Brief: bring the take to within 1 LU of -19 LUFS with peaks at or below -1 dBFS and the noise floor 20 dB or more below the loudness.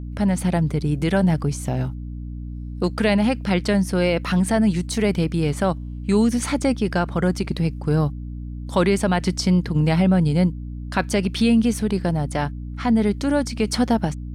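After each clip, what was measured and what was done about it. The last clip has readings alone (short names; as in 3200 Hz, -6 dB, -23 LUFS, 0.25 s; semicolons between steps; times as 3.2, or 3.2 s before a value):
hum 60 Hz; harmonics up to 300 Hz; hum level -28 dBFS; loudness -21.0 LUFS; peak -6.5 dBFS; loudness target -19.0 LUFS
-> notches 60/120/180/240/300 Hz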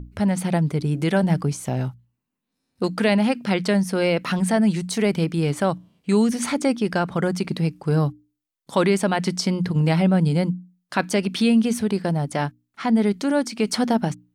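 hum none; loudness -22.0 LUFS; peak -6.0 dBFS; loudness target -19.0 LUFS
-> gain +3 dB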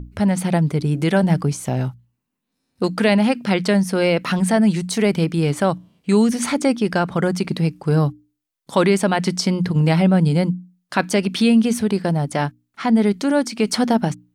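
loudness -19.0 LUFS; peak -3.0 dBFS; noise floor -77 dBFS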